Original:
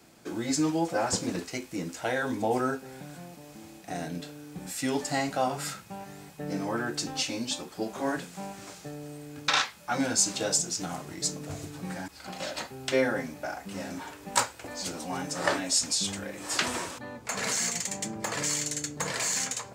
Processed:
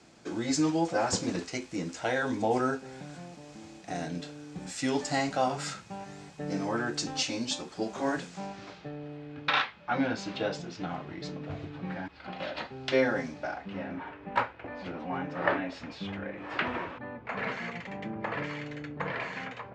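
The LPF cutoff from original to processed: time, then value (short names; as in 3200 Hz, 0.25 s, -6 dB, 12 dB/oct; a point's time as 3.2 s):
LPF 24 dB/oct
8.26 s 7400 Hz
8.91 s 3400 Hz
12.46 s 3400 Hz
13.26 s 6400 Hz
13.87 s 2600 Hz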